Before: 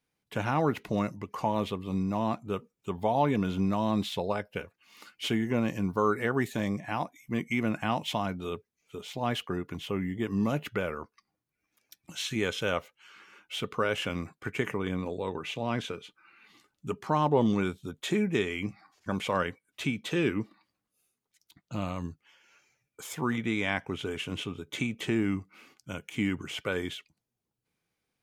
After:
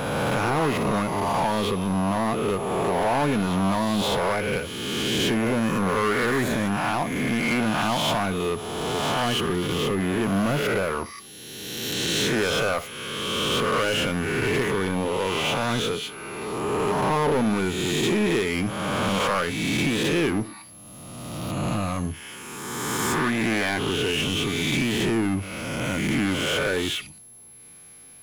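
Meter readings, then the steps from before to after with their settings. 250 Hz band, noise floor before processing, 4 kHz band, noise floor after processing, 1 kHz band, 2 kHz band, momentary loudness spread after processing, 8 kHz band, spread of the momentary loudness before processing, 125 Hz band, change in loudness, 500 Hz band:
+6.0 dB, -85 dBFS, +11.5 dB, -44 dBFS, +7.5 dB, +9.5 dB, 9 LU, +14.5 dB, 12 LU, +6.5 dB, +7.0 dB, +7.5 dB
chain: reverse spectral sustain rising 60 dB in 1.43 s; in parallel at +1 dB: compression, threshold -33 dBFS, peak gain reduction 15.5 dB; on the sum: saturation -20 dBFS, distortion -12 dB; power-law waveshaper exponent 0.7; on a send: flutter echo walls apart 10.6 m, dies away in 0.21 s; on the sum: whistle 11 kHz -47 dBFS; trim +2 dB

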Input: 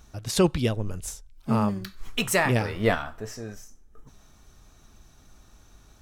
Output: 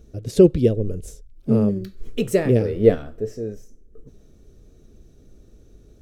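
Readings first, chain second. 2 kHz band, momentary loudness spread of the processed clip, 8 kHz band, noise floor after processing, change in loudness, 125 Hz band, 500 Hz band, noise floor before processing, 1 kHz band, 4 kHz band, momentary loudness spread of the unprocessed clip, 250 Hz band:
-9.0 dB, 17 LU, -7.5 dB, -51 dBFS, +6.0 dB, +5.0 dB, +9.5 dB, -55 dBFS, -9.5 dB, -8.0 dB, 15 LU, +7.0 dB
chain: resonant low shelf 650 Hz +12 dB, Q 3; trim -7.5 dB

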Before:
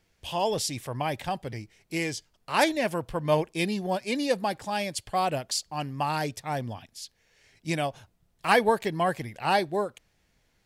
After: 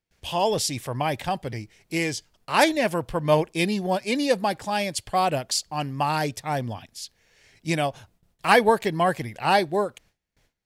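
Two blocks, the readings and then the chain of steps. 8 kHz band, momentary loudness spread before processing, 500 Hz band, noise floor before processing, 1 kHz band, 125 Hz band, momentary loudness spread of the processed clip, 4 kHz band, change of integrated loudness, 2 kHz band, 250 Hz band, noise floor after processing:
+4.0 dB, 11 LU, +4.0 dB, -70 dBFS, +4.0 dB, +4.0 dB, 11 LU, +4.0 dB, +4.0 dB, +4.0 dB, +4.0 dB, -74 dBFS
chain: gate with hold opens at -58 dBFS; trim +4 dB

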